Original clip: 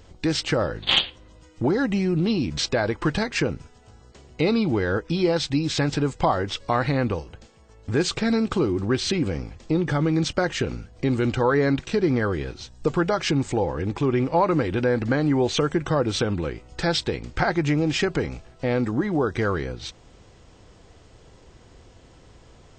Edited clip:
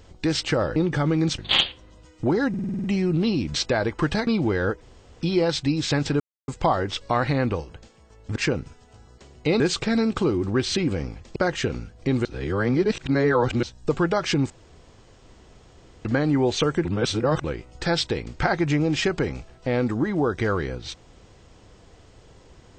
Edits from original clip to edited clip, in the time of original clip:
1.87 stutter 0.05 s, 8 plays
3.3–4.54 move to 7.95
5.08 insert room tone 0.40 s
6.07 insert silence 0.28 s
9.71–10.33 move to 0.76
11.22–12.6 reverse
13.47–15.02 room tone
15.82–16.41 reverse

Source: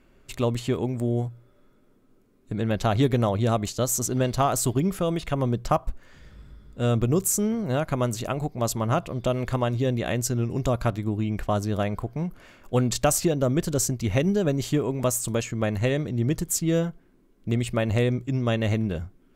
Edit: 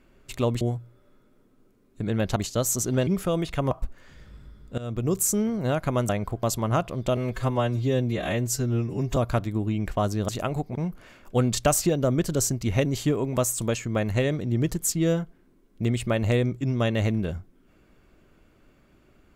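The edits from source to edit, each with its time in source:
0.61–1.12 cut
2.87–3.59 cut
4.3–4.81 cut
5.45–5.76 cut
6.83–7.27 fade in linear, from -18.5 dB
8.14–8.61 swap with 11.8–12.14
9.35–10.68 stretch 1.5×
14.24–14.52 cut

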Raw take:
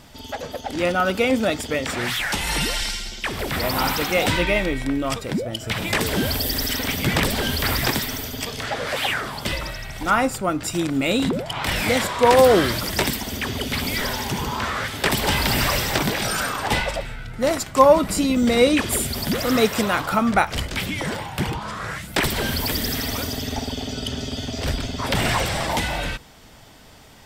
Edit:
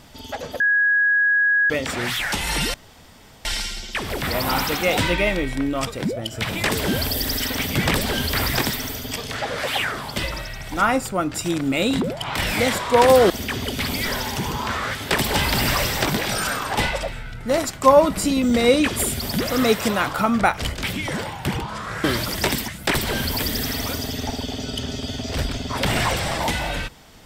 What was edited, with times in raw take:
0.6–1.7 bleep 1660 Hz -14.5 dBFS
2.74 insert room tone 0.71 s
12.59–13.23 move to 21.97

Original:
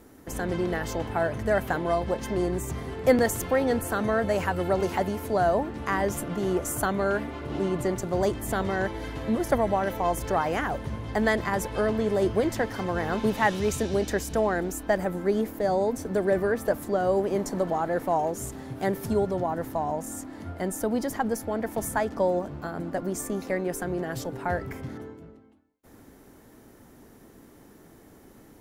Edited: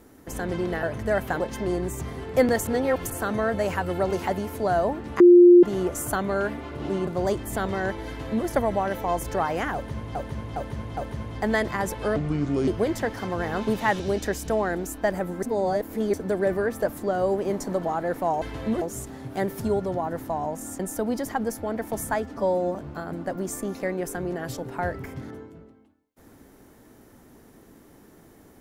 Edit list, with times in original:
0.83–1.23 cut
1.8–2.1 cut
3.37–3.8 reverse
5.9–6.33 bleep 352 Hz -8 dBFS
7.77–8.03 cut
9.03–9.43 copy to 18.27
10.7–11.11 loop, 4 plays
11.89–12.24 speed 68%
13.56–13.85 cut
15.28–15.99 reverse
20.25–20.64 cut
22.07–22.42 stretch 1.5×

